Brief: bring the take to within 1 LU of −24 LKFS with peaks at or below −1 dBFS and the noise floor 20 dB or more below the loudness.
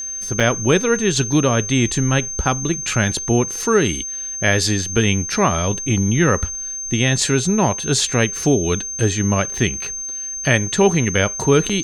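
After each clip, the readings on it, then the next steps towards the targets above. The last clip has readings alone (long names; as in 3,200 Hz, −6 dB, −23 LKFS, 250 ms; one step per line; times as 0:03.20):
number of dropouts 2; longest dropout 5.6 ms; interfering tone 6,300 Hz; level of the tone −25 dBFS; integrated loudness −18.0 LKFS; sample peak −3.0 dBFS; target loudness −24.0 LKFS
→ repair the gap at 0:00.40/0:11.69, 5.6 ms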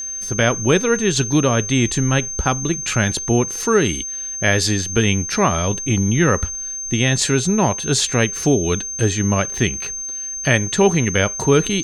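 number of dropouts 0; interfering tone 6,300 Hz; level of the tone −25 dBFS
→ notch filter 6,300 Hz, Q 30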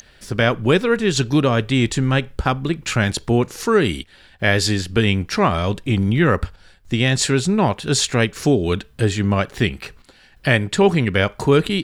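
interfering tone none found; integrated loudness −19.0 LKFS; sample peak −3.0 dBFS; target loudness −24.0 LKFS
→ level −5 dB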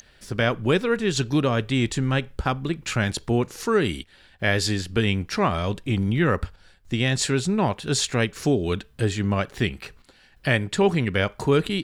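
integrated loudness −24.0 LKFS; sample peak −8.0 dBFS; background noise floor −56 dBFS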